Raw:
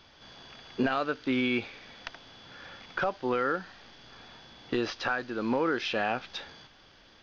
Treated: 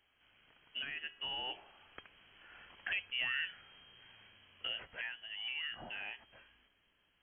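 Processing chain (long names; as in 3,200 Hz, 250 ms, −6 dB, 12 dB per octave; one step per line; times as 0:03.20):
source passing by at 0:03.22, 17 m/s, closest 23 metres
tuned comb filter 310 Hz, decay 0.73 s, mix 50%
voice inversion scrambler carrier 3,200 Hz
level −2.5 dB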